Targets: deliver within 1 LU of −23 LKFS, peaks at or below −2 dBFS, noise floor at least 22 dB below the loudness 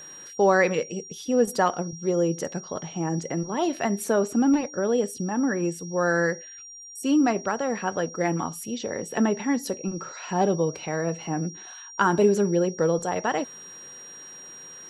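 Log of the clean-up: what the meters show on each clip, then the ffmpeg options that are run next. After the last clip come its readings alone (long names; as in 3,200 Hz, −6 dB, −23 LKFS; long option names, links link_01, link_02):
interfering tone 5,700 Hz; level of the tone −41 dBFS; integrated loudness −25.5 LKFS; sample peak −7.5 dBFS; target loudness −23.0 LKFS
→ -af "bandreject=frequency=5700:width=30"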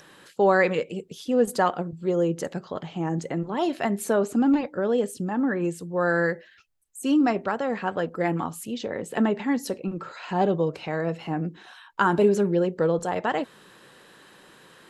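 interfering tone none found; integrated loudness −25.5 LKFS; sample peak −7.5 dBFS; target loudness −23.0 LKFS
→ -af "volume=2.5dB"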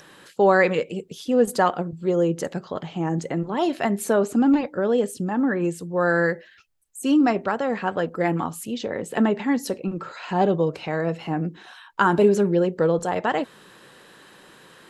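integrated loudness −23.0 LKFS; sample peak −5.0 dBFS; background noise floor −51 dBFS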